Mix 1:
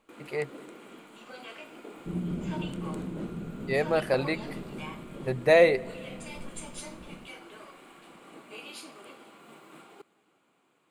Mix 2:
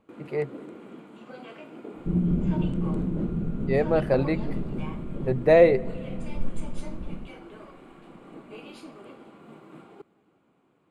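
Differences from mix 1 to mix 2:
speech: add high-pass 150 Hz; master: add tilt EQ -3.5 dB/octave

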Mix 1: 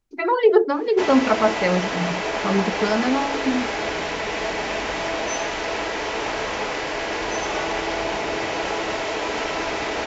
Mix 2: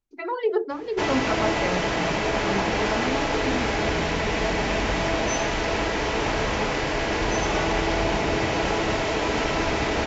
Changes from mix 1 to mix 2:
speech -8.5 dB; background: add tone controls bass +12 dB, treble 0 dB

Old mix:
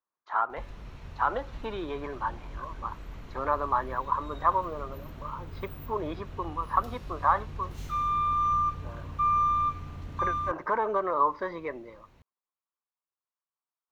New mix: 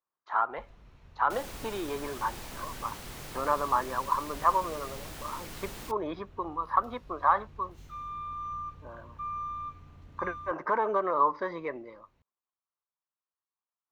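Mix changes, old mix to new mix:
first sound -11.5 dB; second sound: unmuted

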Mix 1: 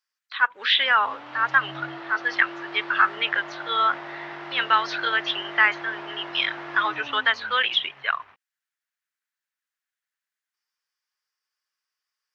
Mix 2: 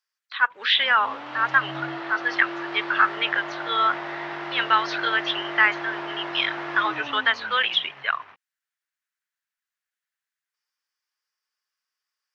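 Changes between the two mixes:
background +4.5 dB; master: add high-pass 110 Hz

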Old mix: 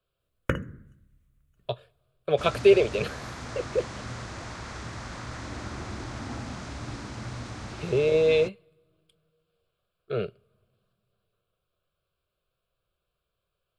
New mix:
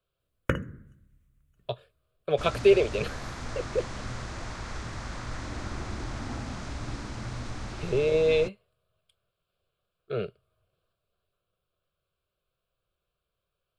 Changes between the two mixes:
second sound: remove high-pass 67 Hz; reverb: off

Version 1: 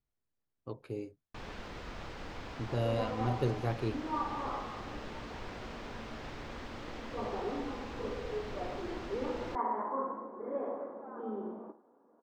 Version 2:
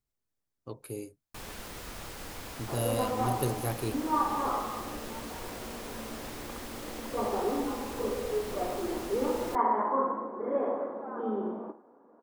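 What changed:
second sound +6.5 dB; master: remove distance through air 180 m

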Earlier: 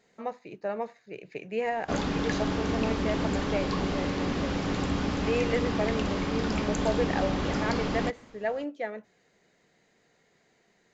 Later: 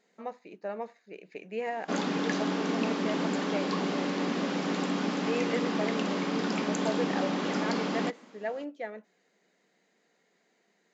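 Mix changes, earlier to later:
speech -4.0 dB; master: add brick-wall FIR high-pass 160 Hz

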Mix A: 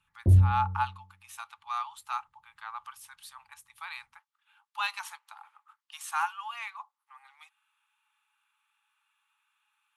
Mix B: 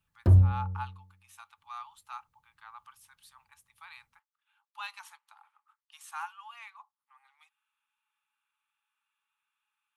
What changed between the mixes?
speech -9.0 dB; background: remove Gaussian low-pass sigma 14 samples

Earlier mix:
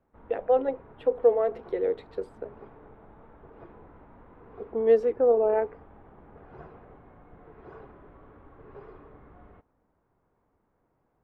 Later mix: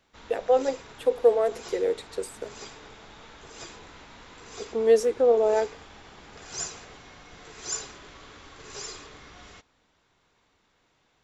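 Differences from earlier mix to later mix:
background: remove low-pass 1 kHz 12 dB/octave; master: remove distance through air 450 m

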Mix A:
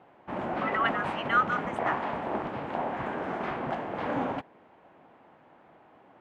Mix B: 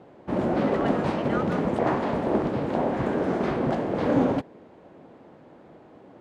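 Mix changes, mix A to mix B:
background +11.0 dB; master: add high-order bell 1.5 kHz -10 dB 2.5 oct

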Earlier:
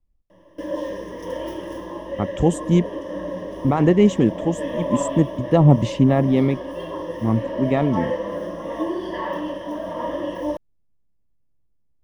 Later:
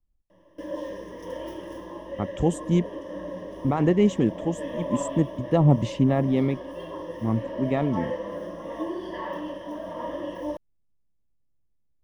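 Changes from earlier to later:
speech -5.0 dB; background -6.0 dB

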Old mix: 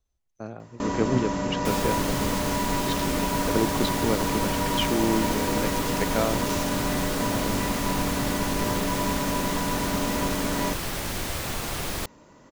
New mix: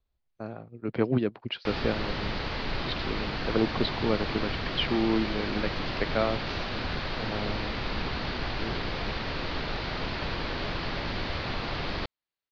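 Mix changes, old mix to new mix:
first sound: muted; master: add elliptic low-pass 4.6 kHz, stop band 50 dB

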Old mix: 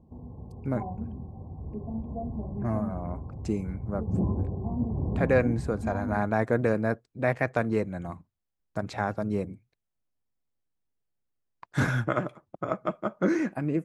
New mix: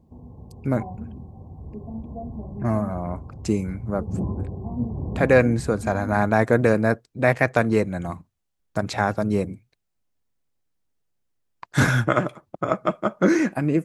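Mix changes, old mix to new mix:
speech +6.5 dB; master: add treble shelf 3.1 kHz +7 dB

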